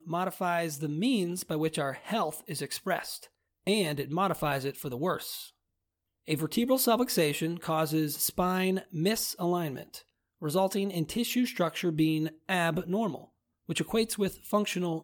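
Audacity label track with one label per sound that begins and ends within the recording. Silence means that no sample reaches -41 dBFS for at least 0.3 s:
3.670000	5.470000	sound
6.280000	9.990000	sound
10.420000	13.240000	sound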